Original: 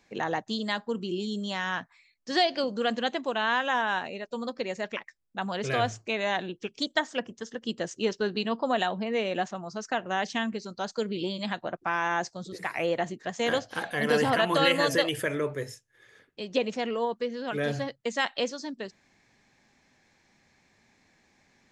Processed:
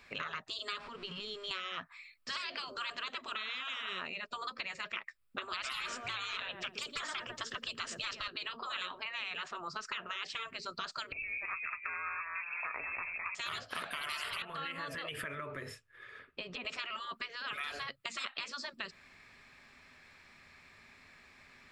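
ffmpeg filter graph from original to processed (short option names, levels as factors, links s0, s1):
-filter_complex "[0:a]asettb=1/sr,asplit=3[s0][s1][s2];[s0]atrim=end=0.794[s3];[s1]atrim=start=0.79:end=1.51,asetpts=PTS-STARTPTS,afade=t=in:d=0.004:c=qsin,afade=t=out:st=0.716:d=0.004:c=qsin,aeval=exprs='val(0)+0.5*0.0075*sgn(val(0))':c=same,lowpass=f=6500:w=0.5412,lowpass=f=6500:w=1.3066,acompressor=threshold=0.01:ratio=2.5:attack=3.2:release=140:knee=1:detection=peak[s4];[s2]atrim=start=1.506[s5];[s3][s4]acrossfade=d=0.004:c1=hsin:c2=qsin[s6];[s6][s5]acrossfade=d=0.004:c1=qsin:c2=hsin,asettb=1/sr,asplit=3[s7][s8][s9];[s7]atrim=end=5.534[s10];[s8]atrim=start=5.53:end=8.28,asetpts=PTS-STARTPTS,afade=t=in:d=0.004:c=qsin,afade=t=out:st=2.746:d=0.004:c=qsin,acontrast=73,equalizer=f=110:w=6.4:g=6.5,asplit=2[s11][s12];[s12]adelay=116,lowpass=f=2300:p=1,volume=0.0944,asplit=2[s13][s14];[s14]adelay=116,lowpass=f=2300:p=1,volume=0.47,asplit=2[s15][s16];[s16]adelay=116,lowpass=f=2300:p=1,volume=0.47[s17];[s11][s13][s15][s17]amix=inputs=4:normalize=0,atrim=end_sample=121275[s18];[s9]atrim=start=8.276[s19];[s10][s18]acrossfade=d=0.004:c1=hsin:c2=qsin[s20];[s20][s19]acrossfade=d=0.004:c1=qsin:c2=hsin,asettb=1/sr,asplit=3[s21][s22][s23];[s21]atrim=end=11.124[s24];[s22]atrim=start=11.12:end=13.35,asetpts=PTS-STARTPTS,afade=t=in:d=0.004:c=qsin,afade=t=out:st=2.226:d=0.004:c=qsin,acompressor=threshold=0.0251:ratio=3:attack=3.2:release=140:knee=1:detection=peak,lowpass=f=2400:t=q:w=0.5098,lowpass=f=2400:t=q:w=0.6013,lowpass=f=2400:t=q:w=0.9,lowpass=f=2400:t=q:w=2.563,afreqshift=-2800,asplit=5[s25][s26][s27][s28][s29];[s26]adelay=208,afreqshift=-120,volume=0.335[s30];[s27]adelay=416,afreqshift=-240,volume=0.12[s31];[s28]adelay=624,afreqshift=-360,volume=0.0437[s32];[s29]adelay=832,afreqshift=-480,volume=0.0157[s33];[s25][s30][s31][s32][s33]amix=inputs=5:normalize=0,atrim=end_sample=98343[s34];[s23]atrim=start=13.346[s35];[s24][s34]acrossfade=d=0.004:c1=hsin:c2=qsin[s36];[s36][s35]acrossfade=d=0.004:c1=qsin:c2=hsin,asettb=1/sr,asplit=3[s37][s38][s39];[s37]atrim=end=14.424[s40];[s38]atrim=start=14.42:end=16.65,asetpts=PTS-STARTPTS,afade=t=in:d=0.004:c=qsin,afade=t=out:st=2.226:d=0.004:c=qsin,lowpass=f=2400:p=1,acompressor=threshold=0.0158:ratio=6:attack=3.2:release=140:knee=1:detection=peak[s41];[s39]atrim=start=16.646[s42];[s40][s41]acrossfade=d=0.004:c1=hsin:c2=qsin[s43];[s43][s42]acrossfade=d=0.004:c1=qsin:c2=hsin,afftfilt=real='re*lt(hypot(re,im),0.0708)':imag='im*lt(hypot(re,im),0.0708)':win_size=1024:overlap=0.75,equalizer=f=125:t=o:w=0.33:g=-10,equalizer=f=200:t=o:w=0.33:g=-10,equalizer=f=315:t=o:w=0.33:g=-11,equalizer=f=500:t=o:w=0.33:g=-6,equalizer=f=800:t=o:w=0.33:g=-8,equalizer=f=1250:t=o:w=0.33:g=8,equalizer=f=2500:t=o:w=0.33:g=5,equalizer=f=6300:t=o:w=0.33:g=-12,acompressor=threshold=0.00631:ratio=4,volume=2.11"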